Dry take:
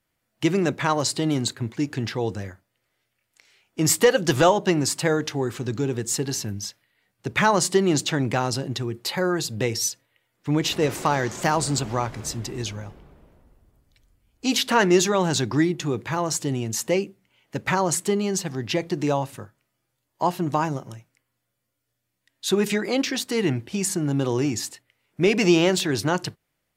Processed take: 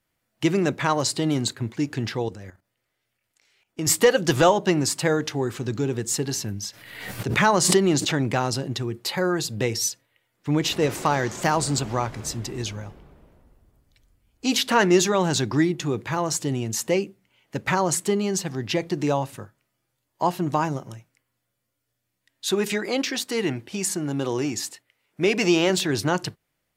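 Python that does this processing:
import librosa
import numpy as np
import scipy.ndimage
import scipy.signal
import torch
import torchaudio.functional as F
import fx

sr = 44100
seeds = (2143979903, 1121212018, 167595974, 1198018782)

y = fx.level_steps(x, sr, step_db=13, at=(2.22, 3.87))
y = fx.pre_swell(y, sr, db_per_s=48.0, at=(6.67, 8.11), fade=0.02)
y = fx.low_shelf(y, sr, hz=180.0, db=-9.0, at=(22.5, 25.7))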